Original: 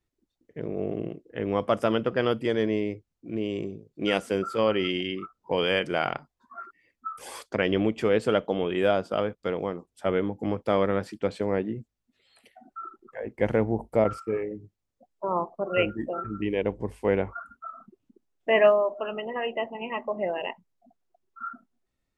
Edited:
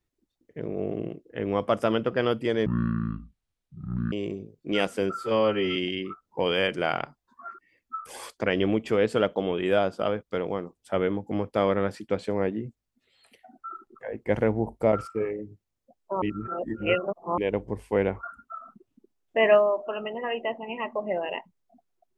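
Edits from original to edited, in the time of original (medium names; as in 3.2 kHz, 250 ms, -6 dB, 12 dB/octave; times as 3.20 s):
2.66–3.45 s: speed 54%
4.47–4.88 s: stretch 1.5×
15.34–16.50 s: reverse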